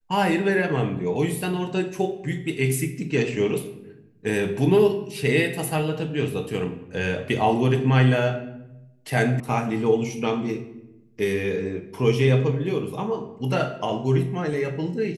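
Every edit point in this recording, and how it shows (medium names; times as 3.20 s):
9.40 s: sound stops dead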